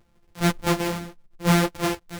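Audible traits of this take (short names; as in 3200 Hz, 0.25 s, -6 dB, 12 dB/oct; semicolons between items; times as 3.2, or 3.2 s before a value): a buzz of ramps at a fixed pitch in blocks of 256 samples; chopped level 1.5 Hz, depth 60%, duty 90%; a shimmering, thickened sound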